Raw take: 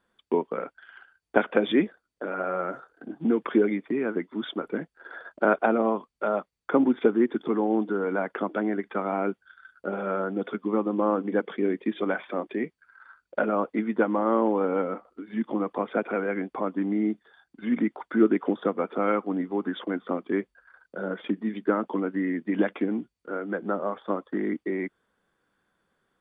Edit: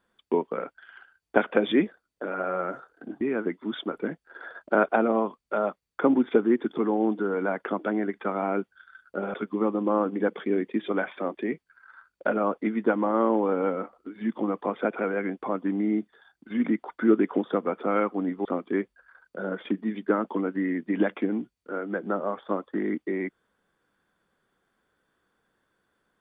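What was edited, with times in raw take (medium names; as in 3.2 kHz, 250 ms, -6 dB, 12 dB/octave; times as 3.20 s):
3.21–3.91 s: delete
10.04–10.46 s: delete
19.57–20.04 s: delete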